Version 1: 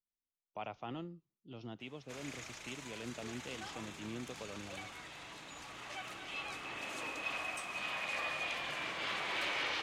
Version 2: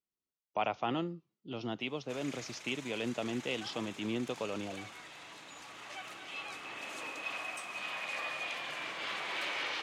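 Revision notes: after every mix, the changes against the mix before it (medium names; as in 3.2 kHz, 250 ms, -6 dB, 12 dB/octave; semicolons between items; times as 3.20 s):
speech +11.0 dB; master: add high-pass 220 Hz 6 dB/octave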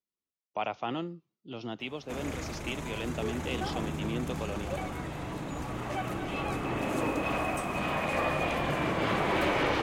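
background: remove band-pass filter 4.2 kHz, Q 0.86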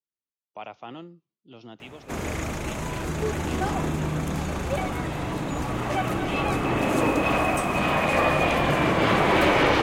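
speech -6.0 dB; background +8.0 dB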